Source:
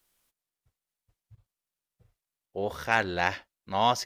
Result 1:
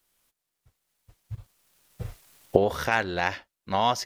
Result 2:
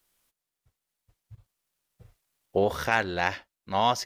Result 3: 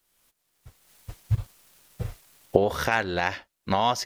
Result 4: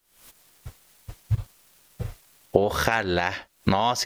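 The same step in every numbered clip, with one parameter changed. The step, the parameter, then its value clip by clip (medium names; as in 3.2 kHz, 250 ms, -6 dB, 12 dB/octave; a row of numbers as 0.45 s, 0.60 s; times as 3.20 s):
recorder AGC, rising by: 14 dB/s, 5 dB/s, 34 dB/s, 91 dB/s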